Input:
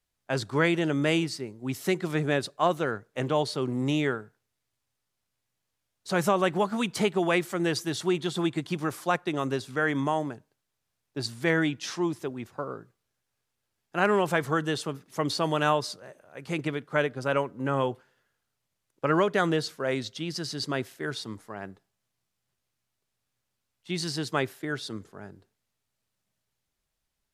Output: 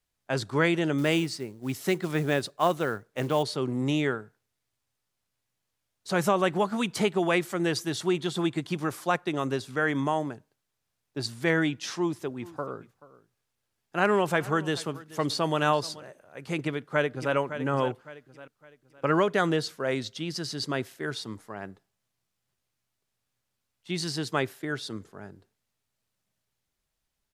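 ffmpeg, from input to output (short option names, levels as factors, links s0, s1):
-filter_complex "[0:a]asettb=1/sr,asplit=3[s0][s1][s2];[s0]atrim=end=0.984[s3];[s1]atrim=start=0.98:end=3.43,asetpts=PTS-STARTPTS,afade=t=in:d=0.004:c=qsin,afade=t=out:st=2.446:d=0.004:c=qsin,acrusher=bits=6:mode=log:mix=0:aa=0.000001[s4];[s2]atrim=start=3.426[s5];[s3][s4]acrossfade=d=0.004:c1=hsin:c2=qsin[s6];[s6][s5]acrossfade=d=0.004:c1=qsin:c2=hsin,asplit=3[s7][s8][s9];[s7]afade=t=out:st=12.4:d=0.02[s10];[s8]aecho=1:1:432:0.106,afade=t=in:st=12.4:d=0.02,afade=t=out:st=16.03:d=0.02[s11];[s9]afade=t=in:st=16.03:d=0.02[s12];[s10][s11][s12]amix=inputs=3:normalize=0,asplit=2[s13][s14];[s14]afade=t=in:st=16.58:d=0.01,afade=t=out:st=17.35:d=0.01,aecho=0:1:560|1120|1680|2240:0.298538|0.104488|0.0365709|0.0127998[s15];[s13][s15]amix=inputs=2:normalize=0"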